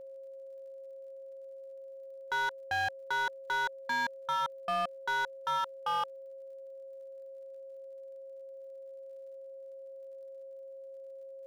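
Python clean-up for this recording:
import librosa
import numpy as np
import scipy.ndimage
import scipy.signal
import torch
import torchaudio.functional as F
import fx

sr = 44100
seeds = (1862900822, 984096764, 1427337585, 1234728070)

y = fx.fix_declip(x, sr, threshold_db=-28.0)
y = fx.fix_declick_ar(y, sr, threshold=6.5)
y = fx.notch(y, sr, hz=540.0, q=30.0)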